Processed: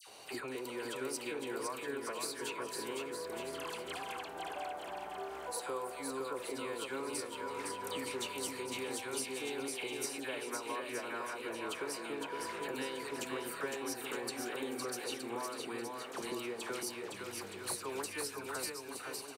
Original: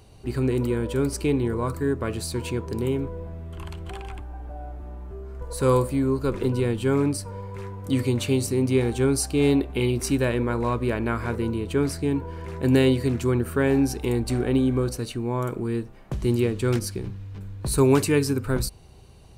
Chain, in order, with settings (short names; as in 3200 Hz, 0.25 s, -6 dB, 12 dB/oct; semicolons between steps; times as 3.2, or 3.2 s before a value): HPF 660 Hz 12 dB/oct; compressor 6:1, threshold -46 dBFS, peak gain reduction 22.5 dB; dispersion lows, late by 75 ms, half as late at 1700 Hz; on a send: bouncing-ball echo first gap 0.51 s, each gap 0.8×, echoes 5; on the sum: gain +6.5 dB; Opus 128 kbps 48000 Hz